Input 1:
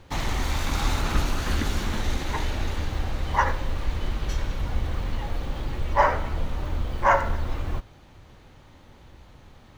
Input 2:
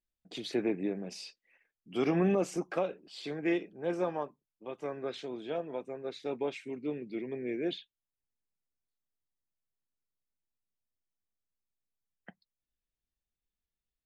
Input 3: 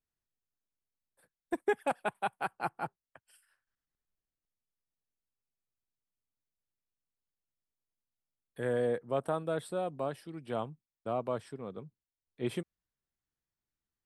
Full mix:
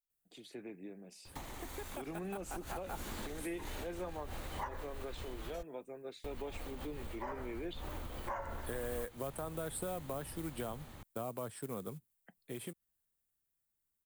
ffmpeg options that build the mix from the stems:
-filter_complex "[0:a]acompressor=threshold=-33dB:ratio=4,adelay=1250,volume=-7.5dB,asplit=3[a][b][c];[a]atrim=end=5.63,asetpts=PTS-STARTPTS,afade=t=out:st=5.626:d=0.004:c=hsin[d];[b]atrim=start=5.63:end=6.24,asetpts=PTS-STARTPTS,volume=0[e];[c]atrim=start=6.24,asetpts=PTS-STARTPTS,afade=t=in:d=0.004:c=hsin[f];[d][e][f]concat=n=3:v=0:a=1[g];[1:a]volume=-13.5dB,asplit=2[h][i];[2:a]alimiter=level_in=7.5dB:limit=-24dB:level=0:latency=1:release=240,volume=-7.5dB,acrusher=bits=6:mode=log:mix=0:aa=0.000001,adelay=100,volume=-2dB[j];[i]apad=whole_len=486344[k];[g][k]sidechaincompress=threshold=-56dB:ratio=12:attack=44:release=128[l];[l][h][j]amix=inputs=3:normalize=0,acrossover=split=230|920[m][n][o];[m]acompressor=threshold=-50dB:ratio=4[p];[n]acompressor=threshold=-47dB:ratio=4[q];[o]acompressor=threshold=-53dB:ratio=4[r];[p][q][r]amix=inputs=3:normalize=0,aexciter=amount=4.7:drive=2.9:freq=7.6k,dynaudnorm=f=420:g=11:m=6.5dB"

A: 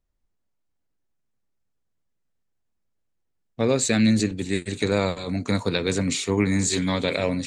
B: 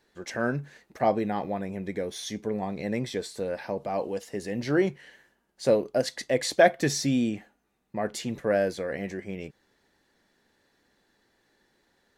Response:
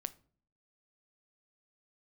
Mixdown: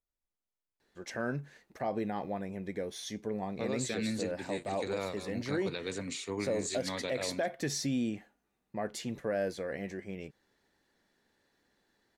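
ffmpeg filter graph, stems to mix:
-filter_complex "[0:a]bass=f=250:g=-7,treble=f=4k:g=-2,volume=-11.5dB[a];[1:a]adelay=800,volume=-5.5dB[b];[a][b]amix=inputs=2:normalize=0,alimiter=limit=-23.5dB:level=0:latency=1:release=66"

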